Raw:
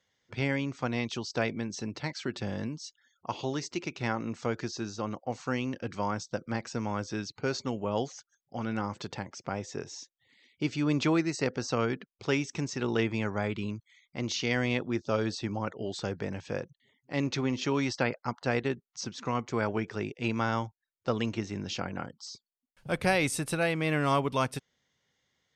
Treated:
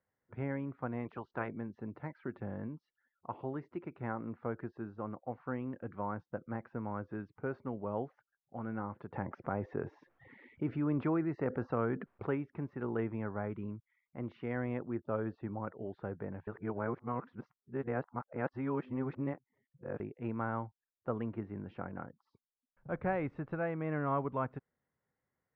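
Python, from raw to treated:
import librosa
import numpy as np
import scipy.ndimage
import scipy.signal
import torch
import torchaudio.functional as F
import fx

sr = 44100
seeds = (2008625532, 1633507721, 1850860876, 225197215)

y = fx.spec_clip(x, sr, under_db=14, at=(1.04, 1.47), fade=0.02)
y = fx.env_flatten(y, sr, amount_pct=50, at=(9.13, 12.34), fade=0.02)
y = fx.edit(y, sr, fx.reverse_span(start_s=16.47, length_s=3.53), tone=tone)
y = scipy.signal.sosfilt(scipy.signal.butter(4, 1600.0, 'lowpass', fs=sr, output='sos'), y)
y = F.gain(torch.from_numpy(y), -6.5).numpy()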